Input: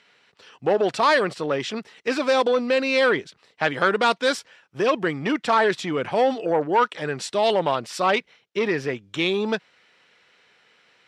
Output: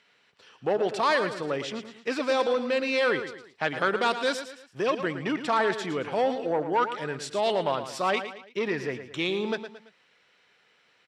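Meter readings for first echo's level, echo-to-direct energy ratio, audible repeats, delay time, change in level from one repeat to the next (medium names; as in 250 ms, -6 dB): -10.5 dB, -9.5 dB, 3, 112 ms, -7.5 dB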